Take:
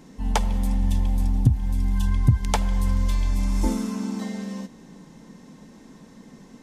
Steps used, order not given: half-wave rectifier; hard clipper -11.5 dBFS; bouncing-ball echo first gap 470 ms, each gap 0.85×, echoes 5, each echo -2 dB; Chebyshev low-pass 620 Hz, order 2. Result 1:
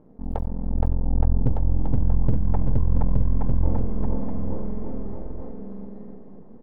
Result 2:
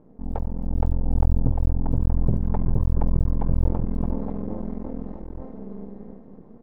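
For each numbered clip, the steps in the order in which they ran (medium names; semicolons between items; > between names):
half-wave rectifier > Chebyshev low-pass > hard clipper > bouncing-ball echo; hard clipper > bouncing-ball echo > half-wave rectifier > Chebyshev low-pass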